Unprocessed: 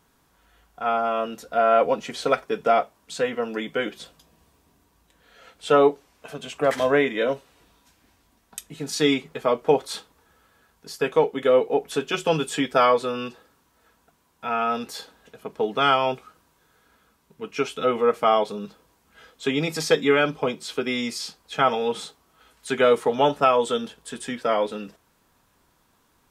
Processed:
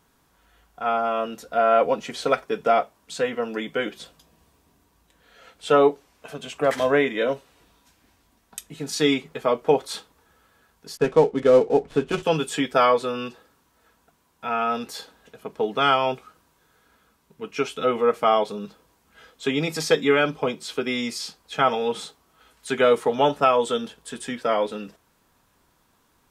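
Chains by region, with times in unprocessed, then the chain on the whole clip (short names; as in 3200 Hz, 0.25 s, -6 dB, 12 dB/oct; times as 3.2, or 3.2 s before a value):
10.97–12.23 switching dead time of 0.1 ms + LPF 8700 Hz + tilt -2.5 dB/oct
whole clip: dry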